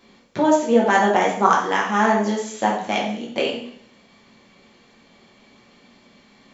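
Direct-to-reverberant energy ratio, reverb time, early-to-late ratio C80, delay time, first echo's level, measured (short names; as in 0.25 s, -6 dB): -3.5 dB, 0.60 s, 8.5 dB, none, none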